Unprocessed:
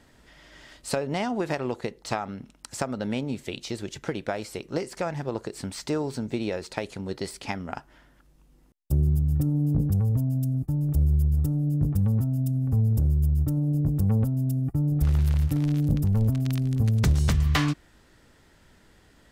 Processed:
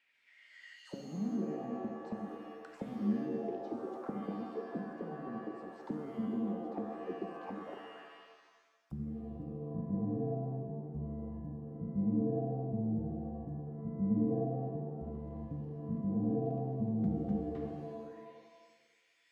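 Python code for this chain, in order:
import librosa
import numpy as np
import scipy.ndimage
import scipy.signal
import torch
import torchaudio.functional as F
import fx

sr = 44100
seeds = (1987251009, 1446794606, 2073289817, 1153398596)

y = fx.auto_wah(x, sr, base_hz=210.0, top_hz=2600.0, q=8.5, full_db=-26.5, direction='down')
y = fx.rev_shimmer(y, sr, seeds[0], rt60_s=1.3, semitones=7, shimmer_db=-2, drr_db=4.0)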